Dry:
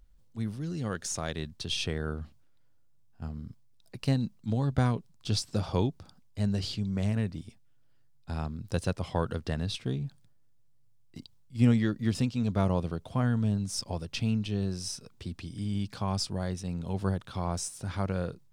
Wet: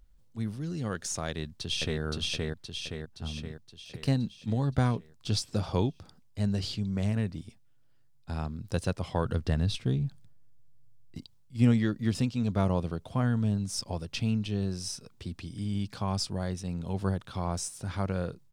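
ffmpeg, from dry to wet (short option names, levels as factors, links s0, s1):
-filter_complex "[0:a]asplit=2[s0][s1];[s1]afade=t=in:st=1.29:d=0.01,afade=t=out:st=2.01:d=0.01,aecho=0:1:520|1040|1560|2080|2600|3120|3640|4160:0.944061|0.519233|0.285578|0.157068|0.0863875|0.0475131|0.0261322|0.0143727[s2];[s0][s2]amix=inputs=2:normalize=0,asettb=1/sr,asplit=3[s3][s4][s5];[s3]atrim=end=9.254[s6];[s4]atrim=start=9.25:end=11.19,asetpts=PTS-STARTPTS,afade=t=in:d=0.004:c=qsin,afade=t=out:st=1.936:d=0.004:c=qsin,lowshelf=f=150:g=8.5[s7];[s5]atrim=start=11.186[s8];[s6][s7]acrossfade=d=0.004:c1=hsin:c2=qsin[s9];[s9][s8]acrossfade=d=0.004:c1=qsin:c2=hsin"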